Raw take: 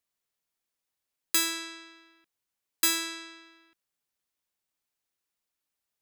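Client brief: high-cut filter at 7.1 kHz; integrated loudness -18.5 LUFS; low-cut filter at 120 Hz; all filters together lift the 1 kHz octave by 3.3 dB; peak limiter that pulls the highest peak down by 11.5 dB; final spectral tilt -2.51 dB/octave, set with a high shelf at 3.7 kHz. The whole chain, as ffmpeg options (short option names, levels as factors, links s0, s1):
-af "highpass=120,lowpass=7100,equalizer=f=1000:t=o:g=5,highshelf=f=3700:g=-5,volume=11.2,alimiter=limit=0.422:level=0:latency=1"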